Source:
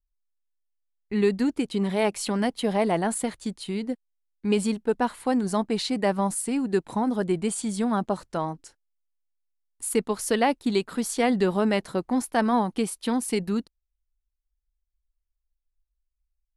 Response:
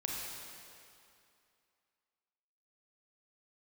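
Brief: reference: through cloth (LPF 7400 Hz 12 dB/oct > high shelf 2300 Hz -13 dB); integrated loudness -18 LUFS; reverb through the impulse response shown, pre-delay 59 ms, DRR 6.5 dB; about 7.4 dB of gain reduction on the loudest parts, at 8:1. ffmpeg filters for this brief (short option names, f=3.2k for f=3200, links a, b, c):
-filter_complex "[0:a]acompressor=threshold=-25dB:ratio=8,asplit=2[a][b];[1:a]atrim=start_sample=2205,adelay=59[c];[b][c]afir=irnorm=-1:irlink=0,volume=-9.5dB[d];[a][d]amix=inputs=2:normalize=0,lowpass=7.4k,highshelf=f=2.3k:g=-13,volume=13.5dB"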